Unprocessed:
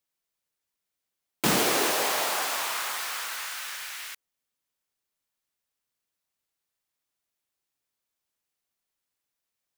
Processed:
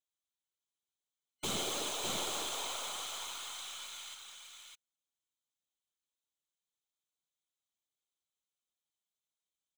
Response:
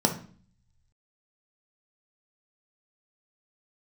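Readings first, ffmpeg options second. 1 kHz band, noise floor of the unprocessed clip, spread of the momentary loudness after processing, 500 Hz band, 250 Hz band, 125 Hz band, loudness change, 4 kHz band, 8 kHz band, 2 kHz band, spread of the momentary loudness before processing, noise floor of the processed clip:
-12.5 dB, -85 dBFS, 15 LU, -12.5 dB, -14.0 dB, -12.0 dB, -11.0 dB, -6.5 dB, -8.5 dB, -15.5 dB, 14 LU, under -85 dBFS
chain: -filter_complex "[0:a]equalizer=f=13000:w=0.48:g=-8,afftfilt=real='hypot(re,im)*cos(2*PI*random(0))':imag='hypot(re,im)*sin(2*PI*random(1))':win_size=512:overlap=0.75,superequalizer=11b=0.398:13b=2.82:15b=3.16:16b=2,aeval=exprs='(tanh(15.8*val(0)+0.5)-tanh(0.5))/15.8':c=same,asplit=2[s0][s1];[s1]aecho=0:1:602:0.631[s2];[s0][s2]amix=inputs=2:normalize=0,volume=0.562"

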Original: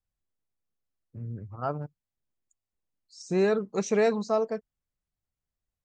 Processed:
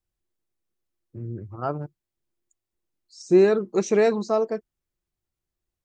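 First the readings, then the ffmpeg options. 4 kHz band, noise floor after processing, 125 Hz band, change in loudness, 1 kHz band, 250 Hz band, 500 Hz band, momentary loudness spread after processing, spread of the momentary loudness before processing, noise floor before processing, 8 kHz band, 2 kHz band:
+2.5 dB, under -85 dBFS, +2.5 dB, +6.0 dB, +2.5 dB, +6.0 dB, +5.5 dB, 18 LU, 16 LU, under -85 dBFS, +2.5 dB, +2.5 dB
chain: -af "equalizer=f=350:t=o:w=0.22:g=14,volume=1.33"

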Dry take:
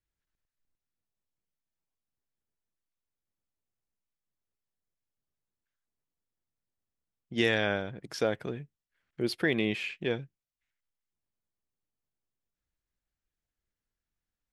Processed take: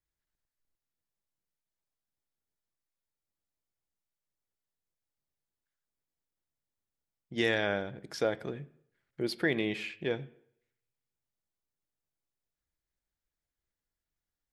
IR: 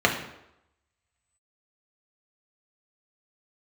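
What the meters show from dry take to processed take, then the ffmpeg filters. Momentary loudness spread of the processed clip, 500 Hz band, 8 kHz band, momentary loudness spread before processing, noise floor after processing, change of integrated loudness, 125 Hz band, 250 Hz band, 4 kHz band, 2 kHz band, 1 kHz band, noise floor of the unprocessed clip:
15 LU, -1.5 dB, -2.0 dB, 12 LU, under -85 dBFS, -2.0 dB, -3.0 dB, -2.5 dB, -2.5 dB, -2.0 dB, -1.0 dB, under -85 dBFS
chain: -filter_complex "[0:a]asplit=2[s0][s1];[1:a]atrim=start_sample=2205,asetrate=52920,aresample=44100[s2];[s1][s2]afir=irnorm=-1:irlink=0,volume=0.0473[s3];[s0][s3]amix=inputs=2:normalize=0,volume=0.75"

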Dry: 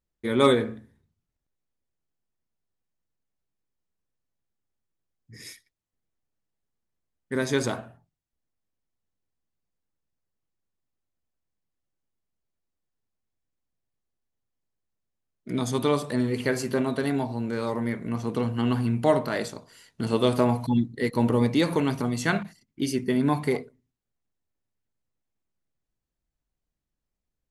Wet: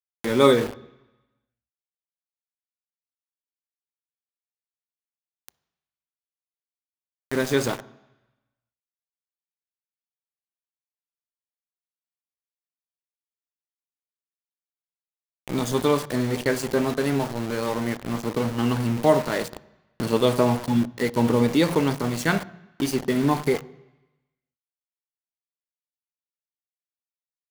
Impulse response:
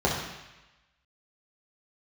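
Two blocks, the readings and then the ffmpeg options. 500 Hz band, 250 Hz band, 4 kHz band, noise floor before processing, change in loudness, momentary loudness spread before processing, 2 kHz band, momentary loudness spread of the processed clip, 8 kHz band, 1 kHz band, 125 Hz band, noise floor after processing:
+3.0 dB, +1.5 dB, +3.0 dB, -85 dBFS, +2.5 dB, 11 LU, +2.5 dB, 9 LU, +3.5 dB, +3.0 dB, +1.0 dB, under -85 dBFS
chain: -filter_complex "[0:a]aeval=exprs='val(0)*gte(abs(val(0)),0.0299)':c=same,acompressor=mode=upward:threshold=0.0224:ratio=2.5,asplit=2[s0][s1];[1:a]atrim=start_sample=2205[s2];[s1][s2]afir=irnorm=-1:irlink=0,volume=0.0299[s3];[s0][s3]amix=inputs=2:normalize=0,volume=1.26"

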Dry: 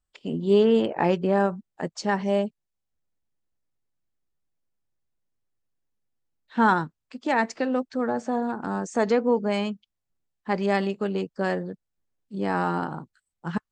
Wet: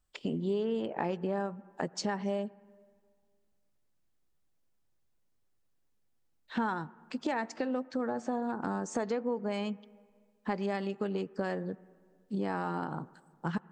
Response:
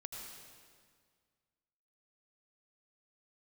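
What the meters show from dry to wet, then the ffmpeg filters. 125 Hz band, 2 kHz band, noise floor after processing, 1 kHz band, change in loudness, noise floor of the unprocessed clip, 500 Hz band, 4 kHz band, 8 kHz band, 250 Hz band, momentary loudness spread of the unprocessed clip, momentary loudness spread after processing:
-7.5 dB, -10.5 dB, -73 dBFS, -10.0 dB, -9.5 dB, -83 dBFS, -10.0 dB, -8.0 dB, -3.5 dB, -8.0 dB, 13 LU, 7 LU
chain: -filter_complex "[0:a]acompressor=threshold=0.0158:ratio=5,asplit=2[s0][s1];[s1]highpass=120,lowpass=2600[s2];[1:a]atrim=start_sample=2205,lowpass=2600[s3];[s2][s3]afir=irnorm=-1:irlink=0,volume=0.178[s4];[s0][s4]amix=inputs=2:normalize=0,volume=1.58"

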